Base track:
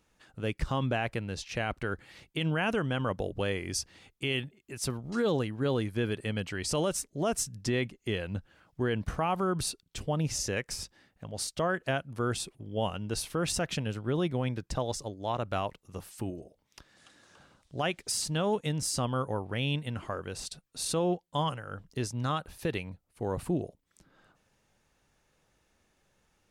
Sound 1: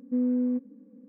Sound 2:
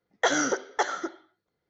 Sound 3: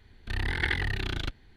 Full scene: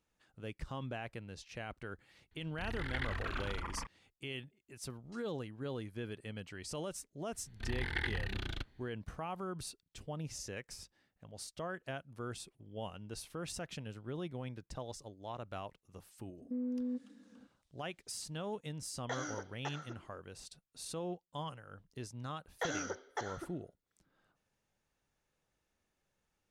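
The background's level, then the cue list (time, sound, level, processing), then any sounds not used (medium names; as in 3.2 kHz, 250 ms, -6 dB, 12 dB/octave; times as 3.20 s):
base track -12 dB
2.31 s: add 3 -12 dB + ever faster or slower copies 101 ms, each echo -5 st, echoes 2
7.33 s: add 3 -8.5 dB
16.39 s: add 1 -8 dB + peak limiter -24 dBFS
18.86 s: add 2 -17.5 dB
22.38 s: add 2 -14 dB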